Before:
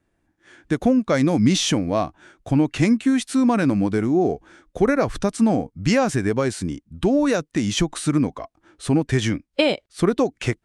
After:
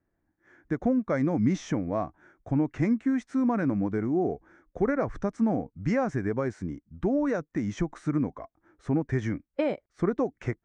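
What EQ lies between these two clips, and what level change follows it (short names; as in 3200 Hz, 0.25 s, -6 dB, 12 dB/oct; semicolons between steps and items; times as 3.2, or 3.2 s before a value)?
air absorption 180 m; band shelf 3500 Hz -13 dB 1.1 oct; -7.0 dB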